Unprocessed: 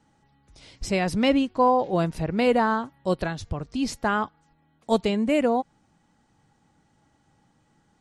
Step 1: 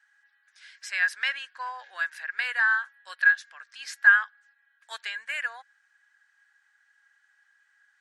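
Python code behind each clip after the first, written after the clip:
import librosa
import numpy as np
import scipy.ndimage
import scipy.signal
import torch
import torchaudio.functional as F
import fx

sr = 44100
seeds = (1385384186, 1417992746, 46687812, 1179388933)

y = fx.ladder_highpass(x, sr, hz=1600.0, resonance_pct=90)
y = y * 10.0 ** (8.5 / 20.0)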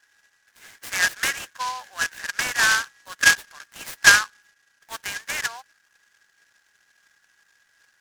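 y = fx.dynamic_eq(x, sr, hz=1000.0, q=2.1, threshold_db=-42.0, ratio=4.0, max_db=4)
y = fx.noise_mod_delay(y, sr, seeds[0], noise_hz=3900.0, depth_ms=0.059)
y = y * 10.0 ** (3.0 / 20.0)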